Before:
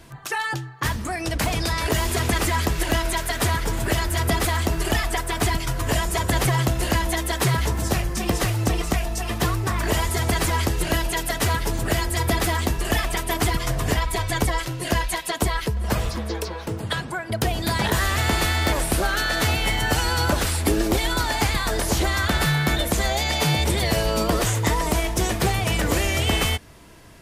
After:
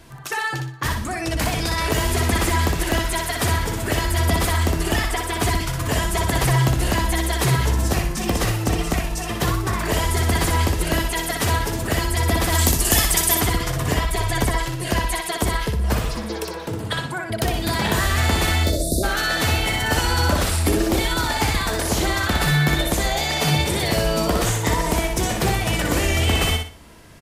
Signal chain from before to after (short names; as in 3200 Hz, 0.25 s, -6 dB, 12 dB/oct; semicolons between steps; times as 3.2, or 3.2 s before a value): 12.52–13.35 tone controls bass +2 dB, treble +14 dB; 18.64–19.03 spectral delete 720–3500 Hz; feedback echo 61 ms, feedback 32%, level -4.5 dB